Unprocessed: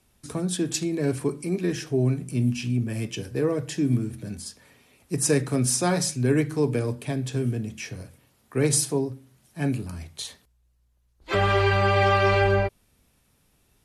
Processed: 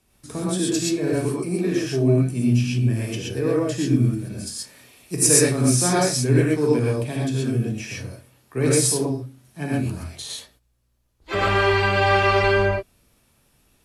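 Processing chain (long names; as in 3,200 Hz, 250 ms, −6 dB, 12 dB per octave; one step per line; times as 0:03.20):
0:04.47–0:05.47: high-shelf EQ 3,400 Hz +8.5 dB
reverb whose tail is shaped and stops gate 150 ms rising, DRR −4.5 dB
level −1.5 dB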